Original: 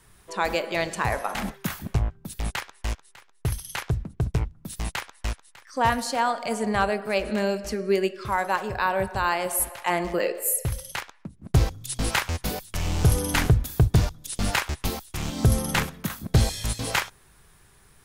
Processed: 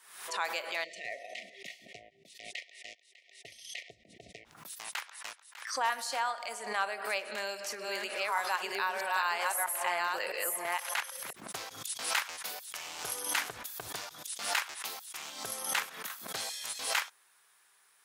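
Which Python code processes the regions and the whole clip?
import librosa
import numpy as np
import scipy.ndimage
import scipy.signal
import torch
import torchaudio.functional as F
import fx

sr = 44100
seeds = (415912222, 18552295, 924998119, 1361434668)

y = fx.chain(x, sr, fx.brickwall_bandstop(low_hz=740.0, high_hz=1800.0),
    fx.air_absorb(metres=110.0), at=(0.84, 4.45))
y = fx.chain(y, sr, fx.reverse_delay(ms=656, wet_db=-1),
    fx.band_squash(depth_pct=70), at=(7.04, 11.33))
y = scipy.signal.sosfilt(scipy.signal.butter(2, 910.0, 'highpass', fs=sr, output='sos'), y)
y = fx.pre_swell(y, sr, db_per_s=77.0)
y = y * 10.0 ** (-6.0 / 20.0)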